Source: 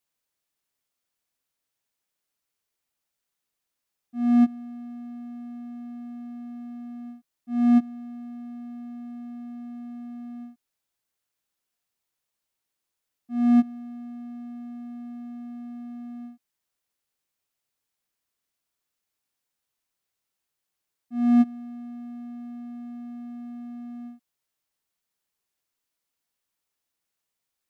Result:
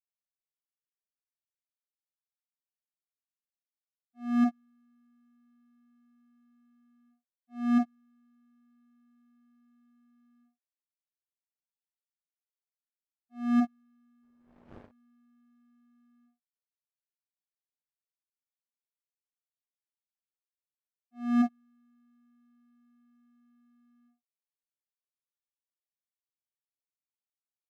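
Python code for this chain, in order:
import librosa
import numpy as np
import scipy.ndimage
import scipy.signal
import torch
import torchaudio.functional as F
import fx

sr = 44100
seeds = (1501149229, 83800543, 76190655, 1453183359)

y = fx.dmg_wind(x, sr, seeds[0], corner_hz=500.0, level_db=-33.0, at=(14.22, 14.85), fade=0.02)
y = fx.peak_eq(y, sr, hz=1900.0, db=2.5, octaves=0.77)
y = fx.room_early_taps(y, sr, ms=(28, 49), db=(-7.0, -5.5))
y = fx.power_curve(y, sr, exponent=2.0)
y = y * librosa.db_to_amplitude(-6.5)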